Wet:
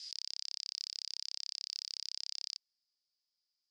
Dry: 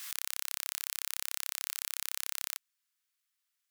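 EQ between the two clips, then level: ladder band-pass 5.1 kHz, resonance 85%; distance through air 91 m; treble shelf 3.7 kHz -6.5 dB; +12.5 dB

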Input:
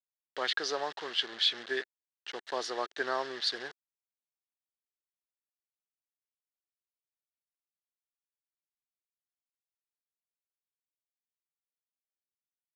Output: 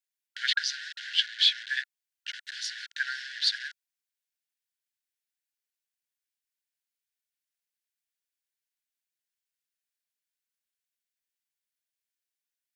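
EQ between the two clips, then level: brick-wall FIR high-pass 1.4 kHz; +5.5 dB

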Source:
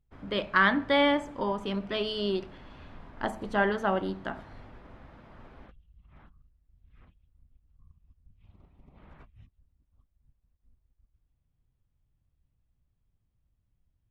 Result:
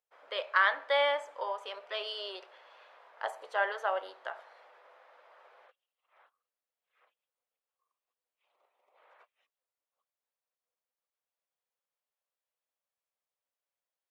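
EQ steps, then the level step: elliptic high-pass 500 Hz, stop band 70 dB; -2.5 dB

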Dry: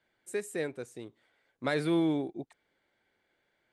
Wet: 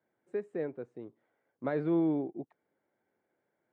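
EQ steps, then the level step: high-pass 130 Hz 12 dB/octave; Bessel low-pass 880 Hz, order 2; 0.0 dB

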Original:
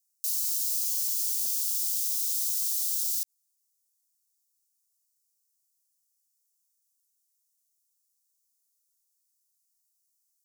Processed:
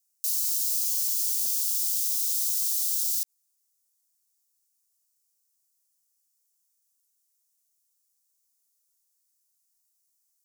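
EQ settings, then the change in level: elliptic high-pass 210 Hz; +3.0 dB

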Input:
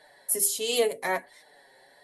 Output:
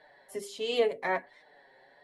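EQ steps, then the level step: low-pass 2.9 kHz 12 dB/octave; -1.5 dB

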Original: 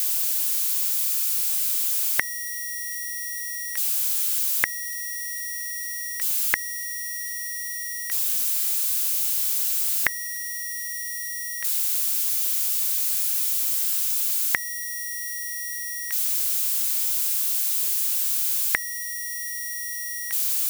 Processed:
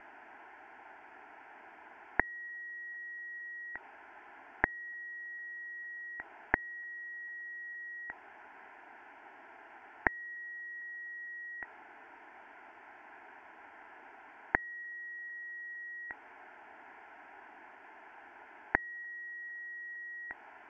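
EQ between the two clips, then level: low-pass 1.3 kHz 24 dB/octave; static phaser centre 790 Hz, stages 8; +7.0 dB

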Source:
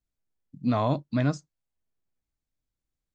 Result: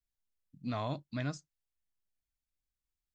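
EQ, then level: graphic EQ 125/250/500/1000 Hz -5/-6/-6/-5 dB; -4.5 dB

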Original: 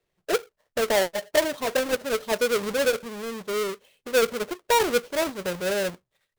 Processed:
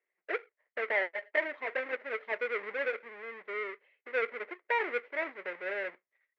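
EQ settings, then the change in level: high-pass 320 Hz 24 dB/octave; four-pole ladder low-pass 2.2 kHz, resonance 75%; 0.0 dB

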